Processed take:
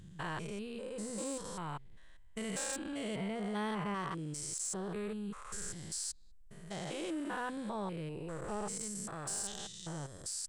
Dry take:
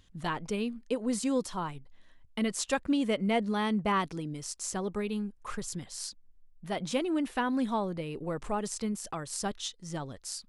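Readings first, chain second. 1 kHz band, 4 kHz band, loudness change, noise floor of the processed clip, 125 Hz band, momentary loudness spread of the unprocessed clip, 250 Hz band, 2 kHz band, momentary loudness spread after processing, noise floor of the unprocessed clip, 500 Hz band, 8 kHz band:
-8.0 dB, -6.5 dB, -7.0 dB, -54 dBFS, -4.5 dB, 10 LU, -9.5 dB, -6.5 dB, 7 LU, -60 dBFS, -8.0 dB, -0.5 dB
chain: stepped spectrum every 0.2 s; in parallel at -2 dB: compressor, threshold -46 dBFS, peak gain reduction 17 dB; on the sum: thirty-one-band EQ 250 Hz -11 dB, 1600 Hz +4 dB, 8000 Hz +10 dB; soft clip -24 dBFS, distortion -23 dB; gain -3.5 dB

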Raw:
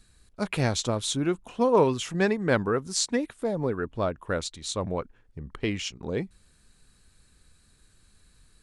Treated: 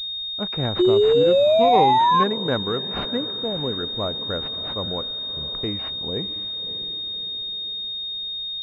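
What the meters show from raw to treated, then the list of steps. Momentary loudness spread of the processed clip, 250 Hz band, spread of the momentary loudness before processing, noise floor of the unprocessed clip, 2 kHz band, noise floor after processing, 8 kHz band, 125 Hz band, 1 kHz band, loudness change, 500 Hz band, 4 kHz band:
11 LU, +2.0 dB, 10 LU, -62 dBFS, -1.5 dB, -30 dBFS, under -20 dB, 0.0 dB, +12.5 dB, +6.0 dB, +7.0 dB, +14.0 dB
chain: diffused feedback echo 0.607 s, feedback 48%, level -13.5 dB; painted sound rise, 0.79–2.24, 350–1100 Hz -16 dBFS; pulse-width modulation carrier 3700 Hz

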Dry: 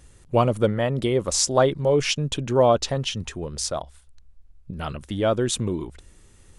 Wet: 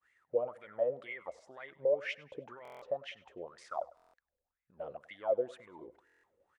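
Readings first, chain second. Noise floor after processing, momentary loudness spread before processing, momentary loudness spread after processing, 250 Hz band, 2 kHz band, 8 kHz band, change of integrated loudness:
under -85 dBFS, 14 LU, 17 LU, -27.0 dB, -11.5 dB, under -35 dB, -14.5 dB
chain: expander -48 dBFS; dynamic EQ 5600 Hz, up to -6 dB, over -40 dBFS, Q 0.82; in parallel at -2 dB: compressor, threshold -26 dBFS, peak gain reduction 12.5 dB; on the sum: limiter -12.5 dBFS, peak gain reduction 7 dB; wah 2 Hz 490–2100 Hz, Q 12; on a send: feedback echo 0.1 s, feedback 40%, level -20.5 dB; on the sum: stuck buffer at 2.63/3.95/6.05, samples 1024, times 7

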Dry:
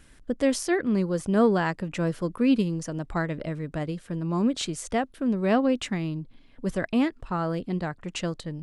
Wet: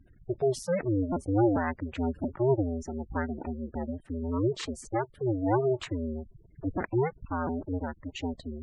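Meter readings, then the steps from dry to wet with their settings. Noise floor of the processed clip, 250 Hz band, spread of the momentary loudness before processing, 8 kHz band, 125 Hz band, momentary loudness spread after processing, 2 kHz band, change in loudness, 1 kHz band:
-59 dBFS, -5.5 dB, 10 LU, -9.5 dB, -1.5 dB, 10 LU, -7.0 dB, -4.0 dB, -2.5 dB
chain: cycle switcher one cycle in 2, inverted; spectral gate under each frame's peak -15 dB strong; high shelf 4800 Hz -7.5 dB; gain -3 dB

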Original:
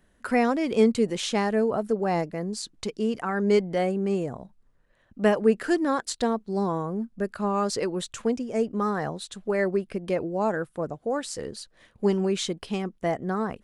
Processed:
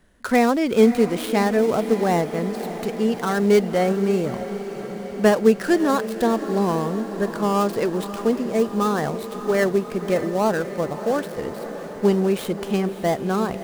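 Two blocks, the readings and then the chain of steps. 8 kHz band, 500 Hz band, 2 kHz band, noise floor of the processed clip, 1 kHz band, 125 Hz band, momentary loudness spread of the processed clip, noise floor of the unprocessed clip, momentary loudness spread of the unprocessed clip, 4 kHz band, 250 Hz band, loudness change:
+1.0 dB, +5.5 dB, +5.0 dB, -34 dBFS, +5.0 dB, +5.5 dB, 10 LU, -64 dBFS, 10 LU, +1.5 dB, +5.5 dB, +5.0 dB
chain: switching dead time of 0.1 ms; diffused feedback echo 0.596 s, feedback 71%, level -12 dB; gain +5 dB

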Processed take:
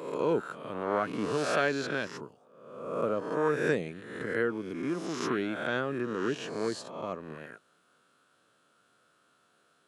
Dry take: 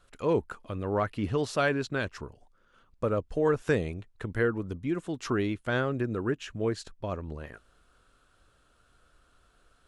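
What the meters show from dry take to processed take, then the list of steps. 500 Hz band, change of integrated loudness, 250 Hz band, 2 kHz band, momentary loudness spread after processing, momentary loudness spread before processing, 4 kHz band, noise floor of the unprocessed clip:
-1.0 dB, -1.0 dB, -2.0 dB, +0.5 dB, 13 LU, 10 LU, +1.0 dB, -66 dBFS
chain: spectral swells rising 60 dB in 1.01 s; HPF 150 Hz 24 dB/oct; gain -3.5 dB

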